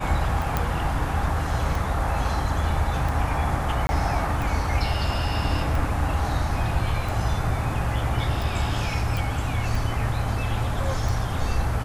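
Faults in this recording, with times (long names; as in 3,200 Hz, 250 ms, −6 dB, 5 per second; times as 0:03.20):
scratch tick 45 rpm
0:00.57: click −9 dBFS
0:03.87–0:03.89: drop-out 20 ms
0:09.17: click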